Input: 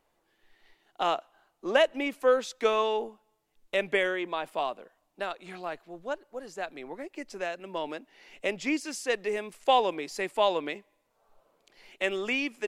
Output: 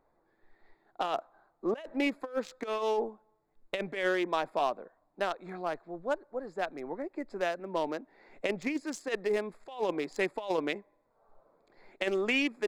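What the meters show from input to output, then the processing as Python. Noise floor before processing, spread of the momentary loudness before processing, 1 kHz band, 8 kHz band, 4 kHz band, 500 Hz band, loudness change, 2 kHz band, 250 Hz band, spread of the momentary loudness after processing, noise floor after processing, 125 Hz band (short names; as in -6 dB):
-74 dBFS, 15 LU, -5.0 dB, -6.5 dB, -5.5 dB, -3.5 dB, -3.5 dB, -3.0 dB, +1.0 dB, 9 LU, -73 dBFS, +2.0 dB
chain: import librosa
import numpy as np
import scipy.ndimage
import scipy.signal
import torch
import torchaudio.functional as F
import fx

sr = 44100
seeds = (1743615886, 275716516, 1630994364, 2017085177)

y = fx.wiener(x, sr, points=15)
y = fx.over_compress(y, sr, threshold_db=-29.0, ratio=-0.5)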